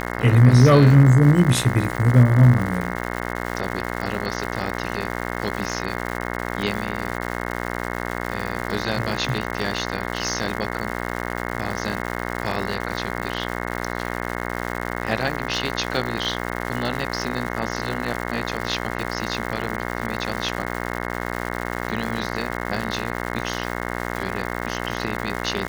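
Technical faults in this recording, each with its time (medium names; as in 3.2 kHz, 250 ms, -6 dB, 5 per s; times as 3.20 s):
buzz 60 Hz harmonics 36 -28 dBFS
crackle 260 per s -27 dBFS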